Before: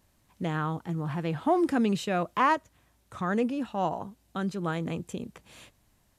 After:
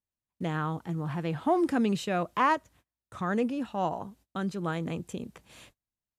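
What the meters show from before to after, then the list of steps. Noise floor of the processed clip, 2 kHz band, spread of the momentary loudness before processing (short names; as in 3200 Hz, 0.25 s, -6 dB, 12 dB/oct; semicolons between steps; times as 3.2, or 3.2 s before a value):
under -85 dBFS, -1.0 dB, 14 LU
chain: gate -55 dBFS, range -29 dB; gain -1 dB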